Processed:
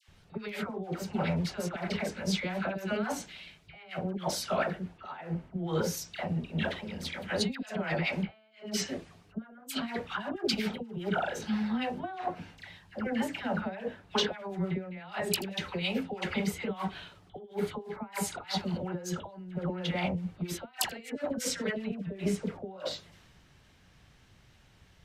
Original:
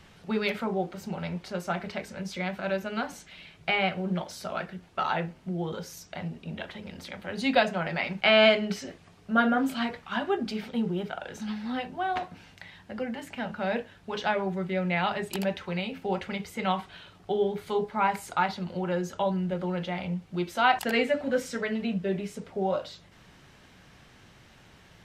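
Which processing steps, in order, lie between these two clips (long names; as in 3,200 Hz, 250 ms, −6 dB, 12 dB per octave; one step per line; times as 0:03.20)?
compressor whose output falls as the input rises −33 dBFS, ratio −0.5
all-pass dispersion lows, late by 78 ms, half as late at 1,100 Hz
multiband upward and downward expander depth 70%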